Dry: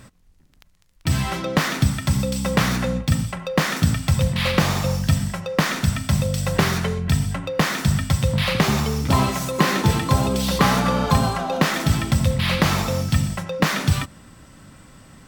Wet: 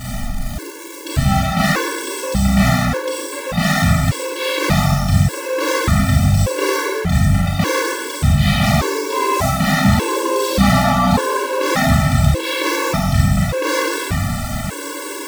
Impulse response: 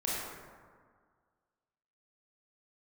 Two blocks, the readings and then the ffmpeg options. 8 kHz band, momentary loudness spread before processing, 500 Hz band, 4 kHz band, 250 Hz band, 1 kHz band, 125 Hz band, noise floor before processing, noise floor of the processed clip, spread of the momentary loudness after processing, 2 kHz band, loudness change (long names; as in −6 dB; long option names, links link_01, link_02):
+4.5 dB, 4 LU, +6.0 dB, +3.0 dB, +4.5 dB, +5.5 dB, +3.5 dB, −54 dBFS, −28 dBFS, 9 LU, +5.0 dB, +4.0 dB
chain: -filter_complex "[0:a]aeval=exprs='val(0)+0.5*0.0944*sgn(val(0))':channel_layout=same[link_01];[1:a]atrim=start_sample=2205,afade=type=out:start_time=0.41:duration=0.01,atrim=end_sample=18522[link_02];[link_01][link_02]afir=irnorm=-1:irlink=0,afftfilt=real='re*gt(sin(2*PI*0.85*pts/sr)*(1-2*mod(floor(b*sr/1024/290),2)),0)':imag='im*gt(sin(2*PI*0.85*pts/sr)*(1-2*mod(floor(b*sr/1024/290),2)),0)':win_size=1024:overlap=0.75,volume=-1dB"